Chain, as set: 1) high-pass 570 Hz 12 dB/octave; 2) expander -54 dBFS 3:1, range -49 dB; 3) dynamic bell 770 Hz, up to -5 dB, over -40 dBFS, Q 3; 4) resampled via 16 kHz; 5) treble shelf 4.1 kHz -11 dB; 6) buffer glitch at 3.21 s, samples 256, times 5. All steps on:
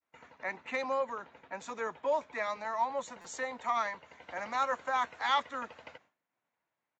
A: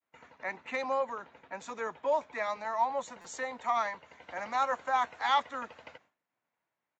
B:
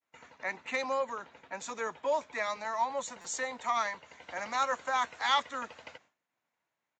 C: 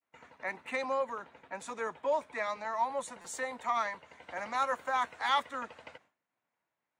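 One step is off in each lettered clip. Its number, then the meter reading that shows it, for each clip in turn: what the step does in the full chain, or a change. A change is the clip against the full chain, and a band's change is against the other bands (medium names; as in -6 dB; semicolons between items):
3, 1 kHz band +2.0 dB; 5, 8 kHz band +7.5 dB; 4, 8 kHz band +2.5 dB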